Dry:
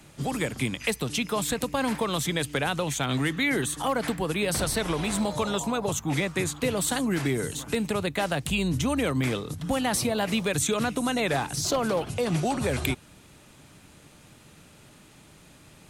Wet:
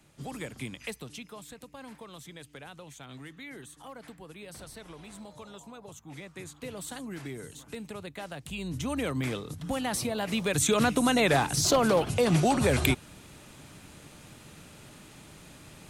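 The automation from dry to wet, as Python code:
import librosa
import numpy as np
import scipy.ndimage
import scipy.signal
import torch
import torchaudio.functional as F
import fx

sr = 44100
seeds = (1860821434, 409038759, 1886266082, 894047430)

y = fx.gain(x, sr, db=fx.line((0.84, -10.0), (1.45, -19.0), (6.0, -19.0), (6.73, -13.0), (8.41, -13.0), (8.97, -5.0), (10.24, -5.0), (10.8, 2.5)))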